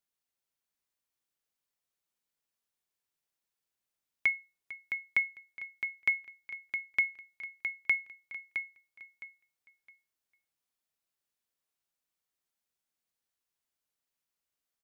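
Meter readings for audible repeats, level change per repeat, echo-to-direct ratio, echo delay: 3, -12.0 dB, -7.0 dB, 0.663 s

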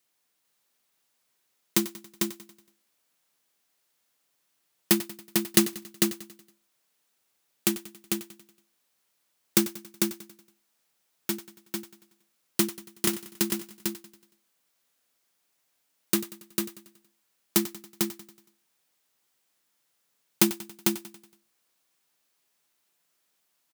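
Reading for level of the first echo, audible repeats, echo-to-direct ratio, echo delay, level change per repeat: -15.0 dB, 8, -3.5 dB, 93 ms, no steady repeat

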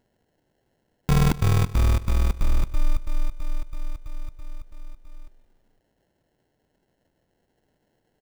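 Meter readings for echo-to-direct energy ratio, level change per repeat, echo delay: -16.5 dB, -5.0 dB, 0.174 s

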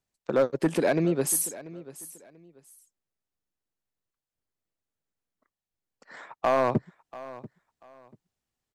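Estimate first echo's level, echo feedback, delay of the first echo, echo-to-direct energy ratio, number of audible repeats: -17.5 dB, 25%, 0.688 s, -17.5 dB, 2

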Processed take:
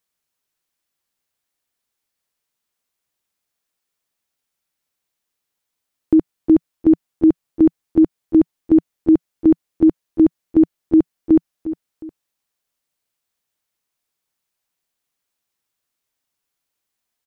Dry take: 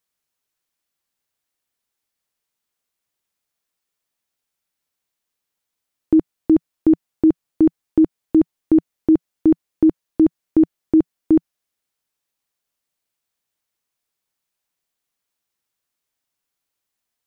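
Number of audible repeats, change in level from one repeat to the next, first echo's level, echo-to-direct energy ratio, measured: 2, -7.5 dB, -13.5 dB, -13.0 dB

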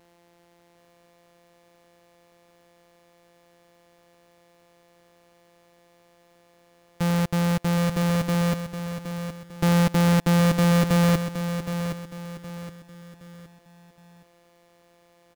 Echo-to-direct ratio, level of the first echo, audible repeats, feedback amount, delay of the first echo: -8.5 dB, -9.0 dB, 4, 37%, 0.768 s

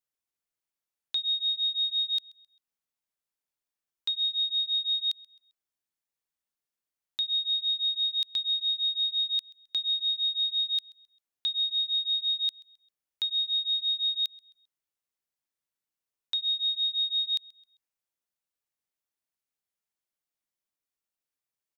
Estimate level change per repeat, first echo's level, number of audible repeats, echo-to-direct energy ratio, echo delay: -8.0 dB, -23.5 dB, 2, -23.0 dB, 0.132 s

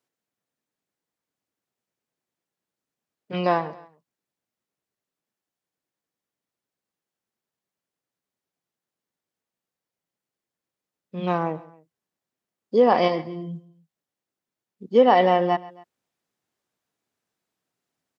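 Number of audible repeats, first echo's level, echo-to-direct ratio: 2, -19.5 dB, -18.5 dB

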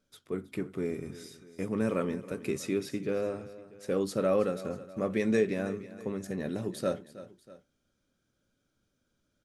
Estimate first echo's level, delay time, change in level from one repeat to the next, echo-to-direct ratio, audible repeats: -16.0 dB, 0.321 s, -6.0 dB, -15.0 dB, 2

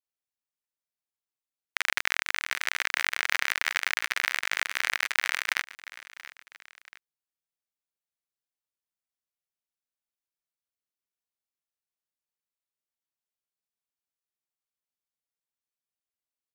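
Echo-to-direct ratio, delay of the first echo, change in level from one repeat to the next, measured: -17.0 dB, 0.681 s, -6.0 dB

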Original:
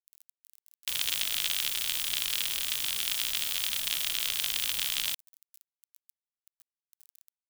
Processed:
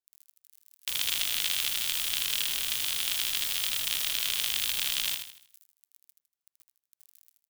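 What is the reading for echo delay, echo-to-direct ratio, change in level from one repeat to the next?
79 ms, -6.0 dB, -8.0 dB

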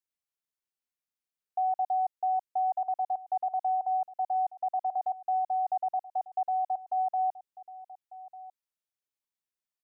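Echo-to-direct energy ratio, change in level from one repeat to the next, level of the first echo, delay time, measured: -18.0 dB, no steady repeat, -18.0 dB, 1.197 s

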